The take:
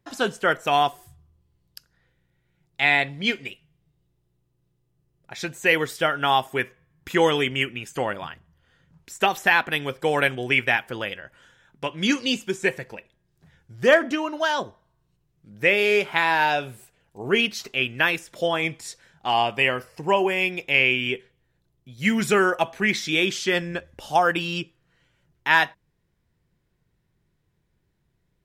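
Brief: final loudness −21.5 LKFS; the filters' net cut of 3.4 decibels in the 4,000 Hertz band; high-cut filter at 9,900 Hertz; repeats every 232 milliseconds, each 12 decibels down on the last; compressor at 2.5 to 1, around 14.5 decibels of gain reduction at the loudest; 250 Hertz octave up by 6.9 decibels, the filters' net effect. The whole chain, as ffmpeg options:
ffmpeg -i in.wav -af "lowpass=9900,equalizer=frequency=250:width_type=o:gain=9,equalizer=frequency=4000:width_type=o:gain=-5,acompressor=threshold=-33dB:ratio=2.5,aecho=1:1:232|464|696:0.251|0.0628|0.0157,volume=11dB" out.wav

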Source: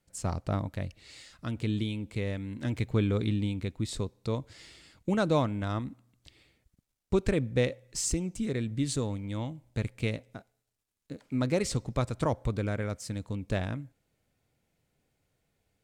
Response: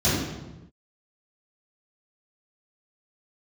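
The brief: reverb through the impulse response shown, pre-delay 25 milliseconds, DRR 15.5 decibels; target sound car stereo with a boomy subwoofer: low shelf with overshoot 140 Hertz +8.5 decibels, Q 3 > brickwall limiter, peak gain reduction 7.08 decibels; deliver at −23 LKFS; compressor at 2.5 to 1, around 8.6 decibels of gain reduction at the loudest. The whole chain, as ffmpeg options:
-filter_complex "[0:a]acompressor=threshold=-34dB:ratio=2.5,asplit=2[link_01][link_02];[1:a]atrim=start_sample=2205,adelay=25[link_03];[link_02][link_03]afir=irnorm=-1:irlink=0,volume=-32dB[link_04];[link_01][link_04]amix=inputs=2:normalize=0,lowshelf=frequency=140:width_type=q:width=3:gain=8.5,volume=6dB,alimiter=limit=-14dB:level=0:latency=1"

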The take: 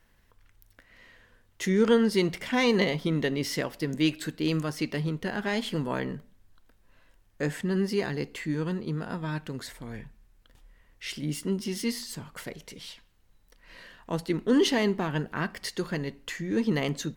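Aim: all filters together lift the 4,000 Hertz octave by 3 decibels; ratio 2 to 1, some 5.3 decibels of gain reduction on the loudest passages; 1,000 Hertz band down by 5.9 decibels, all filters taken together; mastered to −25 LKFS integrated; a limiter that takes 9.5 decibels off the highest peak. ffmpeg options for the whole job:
ffmpeg -i in.wav -af "equalizer=frequency=1000:width_type=o:gain=-8,equalizer=frequency=4000:width_type=o:gain=4.5,acompressor=threshold=-28dB:ratio=2,volume=10dB,alimiter=limit=-14.5dB:level=0:latency=1" out.wav

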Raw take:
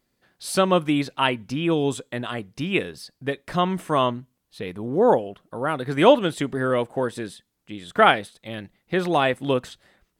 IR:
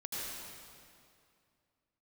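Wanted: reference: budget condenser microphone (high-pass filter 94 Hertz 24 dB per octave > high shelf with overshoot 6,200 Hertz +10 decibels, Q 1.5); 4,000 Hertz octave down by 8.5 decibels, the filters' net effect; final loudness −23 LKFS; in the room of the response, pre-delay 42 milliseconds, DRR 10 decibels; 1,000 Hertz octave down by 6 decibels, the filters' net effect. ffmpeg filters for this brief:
-filter_complex "[0:a]equalizer=frequency=1000:width_type=o:gain=-7.5,equalizer=frequency=4000:width_type=o:gain=-9,asplit=2[link_01][link_02];[1:a]atrim=start_sample=2205,adelay=42[link_03];[link_02][link_03]afir=irnorm=-1:irlink=0,volume=-12dB[link_04];[link_01][link_04]amix=inputs=2:normalize=0,highpass=frequency=94:width=0.5412,highpass=frequency=94:width=1.3066,highshelf=frequency=6200:width_type=q:width=1.5:gain=10,volume=2dB"

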